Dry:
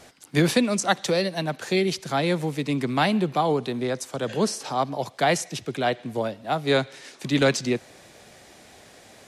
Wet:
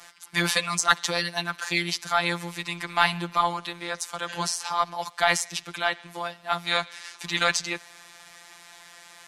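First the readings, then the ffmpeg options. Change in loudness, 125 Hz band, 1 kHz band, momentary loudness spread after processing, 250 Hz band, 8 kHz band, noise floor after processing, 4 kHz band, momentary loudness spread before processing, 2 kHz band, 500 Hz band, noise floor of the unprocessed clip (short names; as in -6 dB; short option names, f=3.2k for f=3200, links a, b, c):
-1.5 dB, -9.0 dB, +0.5 dB, 10 LU, -11.5 dB, +2.5 dB, -50 dBFS, +2.5 dB, 8 LU, +3.5 dB, -8.5 dB, -51 dBFS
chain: -af "afftfilt=real='hypot(re,im)*cos(PI*b)':imag='0':win_size=1024:overlap=0.75,lowshelf=f=710:t=q:w=1.5:g=-12,aeval=exprs='0.447*(cos(1*acos(clip(val(0)/0.447,-1,1)))-cos(1*PI/2))+0.0158*(cos(4*acos(clip(val(0)/0.447,-1,1)))-cos(4*PI/2))':c=same,volume=6dB"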